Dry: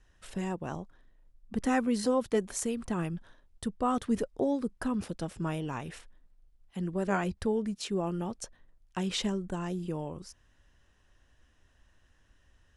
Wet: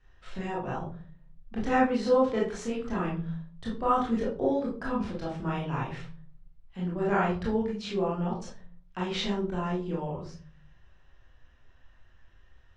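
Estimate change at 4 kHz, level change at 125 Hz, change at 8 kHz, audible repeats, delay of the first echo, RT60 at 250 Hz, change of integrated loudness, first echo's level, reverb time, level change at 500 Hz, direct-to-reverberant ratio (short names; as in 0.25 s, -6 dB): +1.0 dB, +3.0 dB, -9.0 dB, none, none, 0.75 s, +3.0 dB, none, 0.40 s, +4.0 dB, -5.5 dB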